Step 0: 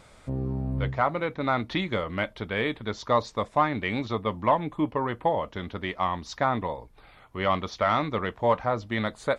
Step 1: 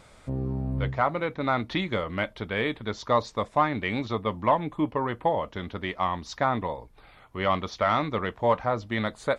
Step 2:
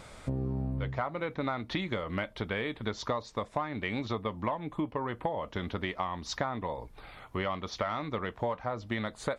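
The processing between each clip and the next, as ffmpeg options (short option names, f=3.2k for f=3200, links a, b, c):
-af anull
-af "acompressor=threshold=-33dB:ratio=10,volume=4dB"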